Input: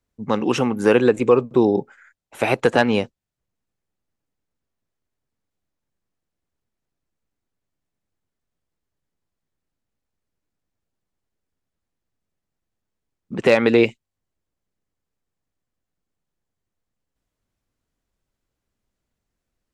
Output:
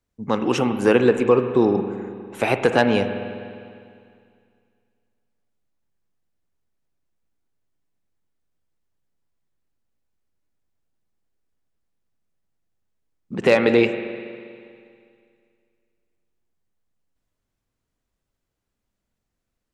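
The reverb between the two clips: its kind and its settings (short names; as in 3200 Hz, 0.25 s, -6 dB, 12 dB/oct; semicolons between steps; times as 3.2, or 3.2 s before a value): spring tank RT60 2.3 s, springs 40/50 ms, chirp 75 ms, DRR 8 dB; gain -1 dB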